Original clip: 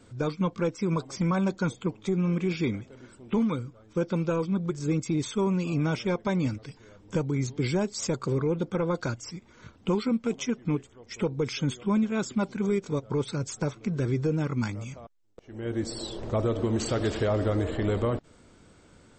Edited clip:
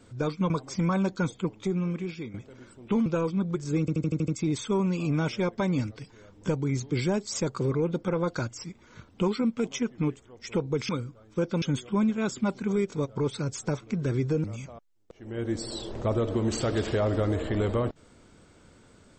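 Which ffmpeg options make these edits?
-filter_complex "[0:a]asplit=13[s0][s1][s2][s3][s4][s5][s6][s7][s8][s9][s10][s11][s12];[s0]atrim=end=0.502[s13];[s1]atrim=start=0.918:end=2.76,asetpts=PTS-STARTPTS,afade=t=out:st=1.072:d=0.77:silence=0.199526[s14];[s2]atrim=start=2.76:end=3.482,asetpts=PTS-STARTPTS,afade=t=in:d=0.004:c=hsin:silence=0.199526[s15];[s3]atrim=start=4.208:end=5.032[s16];[s4]atrim=start=4.948:end=5.032[s17];[s5]atrim=start=4.948:end=5.032[s18];[s6]atrim=start=4.948:end=5.032[s19];[s7]atrim=start=4.948:end=5.032[s20];[s8]atrim=start=4.948:end=5.032[s21];[s9]atrim=start=4.948:end=11.562[s22];[s10]atrim=start=3.478:end=4.212[s23];[s11]atrim=start=11.558:end=14.382[s24];[s12]atrim=start=14.718[s25];[s14][s15]concat=n=2:v=0:a=1[s26];[s13][s26]acrossfade=d=0.004:c1=hsin:c2=hsin[s27];[s27][s16]acrossfade=d=0.004:c1=hsin:c2=hsin[s28];[s28][s17]acrossfade=d=0.004:c1=hsin:c2=hsin[s29];[s29][s18]acrossfade=d=0.004:c1=hsin:c2=hsin[s30];[s30][s19]acrossfade=d=0.004:c1=hsin:c2=hsin[s31];[s31][s20]acrossfade=d=0.004:c1=hsin:c2=hsin[s32];[s32][s21]acrossfade=d=0.004:c1=hsin:c2=hsin[s33];[s33][s22]acrossfade=d=0.004:c1=hsin:c2=hsin[s34];[s34][s23]acrossfade=d=0.004:c1=hsin:c2=hsin[s35];[s35][s24]acrossfade=d=0.004:c1=hsin:c2=hsin[s36];[s36][s25]acrossfade=d=0.004:c1=hsin:c2=hsin"

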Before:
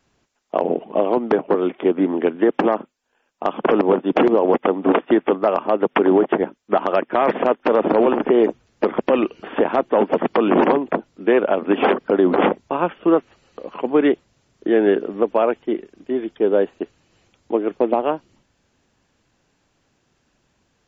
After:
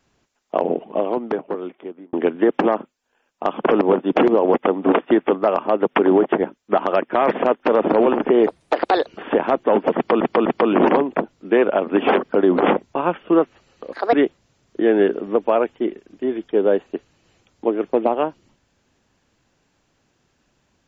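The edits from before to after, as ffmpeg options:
-filter_complex "[0:a]asplit=8[s0][s1][s2][s3][s4][s5][s6][s7];[s0]atrim=end=2.13,asetpts=PTS-STARTPTS,afade=t=out:st=0.62:d=1.51[s8];[s1]atrim=start=2.13:end=8.474,asetpts=PTS-STARTPTS,afade=t=in:d=0.004:c=hsin[s9];[s2]atrim=start=8.47:end=9.32,asetpts=PTS-STARTPTS,asetrate=63063,aresample=44100,atrim=end_sample=26213,asetpts=PTS-STARTPTS[s10];[s3]atrim=start=9.316:end=10.462[s11];[s4]atrim=start=10.208:end=10.462[s12];[s5]atrim=start=10.208:end=13.684[s13];[s6]atrim=start=13.68:end=14,asetpts=PTS-STARTPTS,asetrate=68796,aresample=44100,atrim=end_sample=9046,asetpts=PTS-STARTPTS[s14];[s7]atrim=start=13.996[s15];[s8][s9]concat=n=2:v=0:a=1[s16];[s16][s10]acrossfade=d=0.004:c1=hsin:c2=hsin[s17];[s17][s11]acrossfade=d=0.004:c1=hsin:c2=hsin[s18];[s18][s12]acrossfade=d=0.004:c1=hsin:c2=hsin[s19];[s19][s13]acrossfade=d=0.004:c1=hsin:c2=hsin[s20];[s20][s14]acrossfade=d=0.004:c1=hsin:c2=hsin[s21];[s21][s15]acrossfade=d=0.004:c1=hsin:c2=hsin"

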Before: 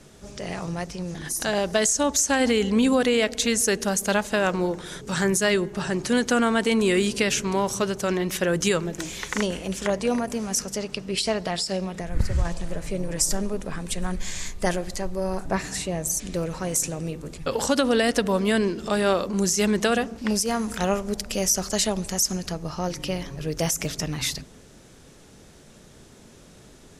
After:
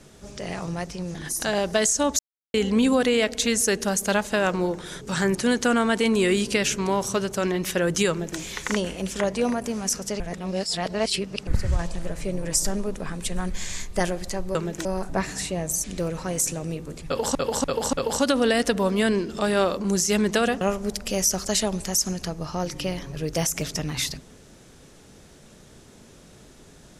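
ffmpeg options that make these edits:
-filter_complex "[0:a]asplit=12[s0][s1][s2][s3][s4][s5][s6][s7][s8][s9][s10][s11];[s0]atrim=end=2.19,asetpts=PTS-STARTPTS,afade=t=out:st=2.186:d=0.004:c=hsin[s12];[s1]atrim=start=2.19:end=2.54,asetpts=PTS-STARTPTS,volume=0[s13];[s2]atrim=start=2.54:end=5.352,asetpts=PTS-STARTPTS,afade=t=in:d=0.004:c=hsin[s14];[s3]atrim=start=6.008:end=10.862[s15];[s4]atrim=start=10.858:end=12.132,asetpts=PTS-STARTPTS,areverse[s16];[s5]atrim=start=12.128:end=15.212[s17];[s6]atrim=start=8.748:end=9.052[s18];[s7]atrim=start=15.208:end=17.712[s19];[s8]atrim=start=17.418:end=17.712[s20];[s9]atrim=start=17.418:end=17.712[s21];[s10]atrim=start=17.418:end=20.102[s22];[s11]atrim=start=20.848[s23];[s12][s13][s14]concat=n=3:v=0:a=1[s24];[s24][s15]acrossfade=d=0.004:c1=hsin:c2=hsin[s25];[s25][s16]acrossfade=d=0.004:c1=hsin:c2=hsin[s26];[s26][s17]acrossfade=d=0.004:c1=hsin:c2=hsin[s27];[s27][s18]acrossfade=d=0.004:c1=hsin:c2=hsin[s28];[s28][s19]acrossfade=d=0.004:c1=hsin:c2=hsin[s29];[s29][s20]acrossfade=d=0.004:c1=hsin:c2=hsin[s30];[s30][s21]acrossfade=d=0.004:c1=hsin:c2=hsin[s31];[s31][s22]acrossfade=d=0.004:c1=hsin:c2=hsin[s32];[s32][s23]acrossfade=d=0.004:c1=hsin:c2=hsin"

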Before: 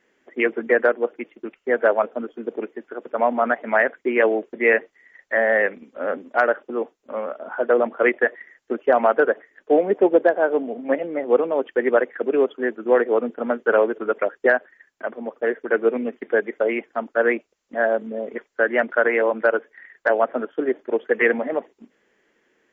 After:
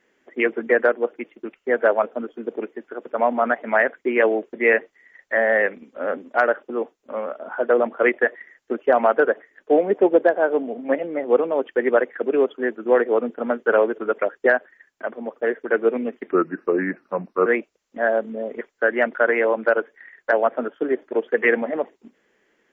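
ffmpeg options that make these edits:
-filter_complex "[0:a]asplit=3[s0][s1][s2];[s0]atrim=end=16.314[s3];[s1]atrim=start=16.31:end=17.23,asetpts=PTS-STARTPTS,asetrate=35280,aresample=44100[s4];[s2]atrim=start=17.226[s5];[s3][s4]acrossfade=d=0.004:c1=hsin:c2=hsin[s6];[s6][s5]acrossfade=d=0.004:c1=hsin:c2=hsin"

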